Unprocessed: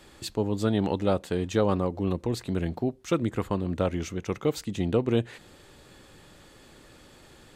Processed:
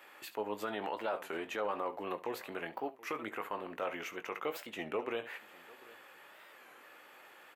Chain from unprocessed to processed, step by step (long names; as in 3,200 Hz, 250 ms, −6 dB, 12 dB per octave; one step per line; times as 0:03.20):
high-pass filter 770 Hz 12 dB per octave
on a send: ambience of single reflections 19 ms −10 dB, 69 ms −17.5 dB
on the sum: brickwall limiter −27.5 dBFS, peak gain reduction 9.5 dB
flat-topped bell 5,800 Hz −14 dB
single-tap delay 744 ms −21.5 dB
wow of a warped record 33 1/3 rpm, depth 160 cents
level +2 dB